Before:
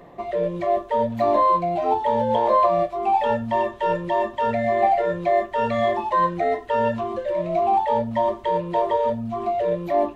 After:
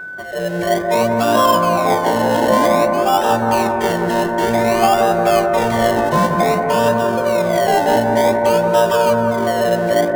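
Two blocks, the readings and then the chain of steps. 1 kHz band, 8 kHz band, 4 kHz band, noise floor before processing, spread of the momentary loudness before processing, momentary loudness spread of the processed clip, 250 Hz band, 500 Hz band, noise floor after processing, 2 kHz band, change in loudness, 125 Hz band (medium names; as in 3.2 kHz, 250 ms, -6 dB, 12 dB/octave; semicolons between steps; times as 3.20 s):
+4.5 dB, no reading, +15.0 dB, -40 dBFS, 6 LU, 4 LU, +10.0 dB, +7.0 dB, -21 dBFS, +12.0 dB, +6.5 dB, +9.0 dB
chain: median filter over 9 samples; high-pass 87 Hz; tone controls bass +1 dB, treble +11 dB; level rider gain up to 7.5 dB; in parallel at -3 dB: decimation with a swept rate 29×, swing 60% 0.54 Hz; on the sum: whistle 1.5 kHz -23 dBFS; on a send: bucket-brigade echo 178 ms, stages 2048, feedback 67%, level -4 dB; on the sum: trim -4.5 dB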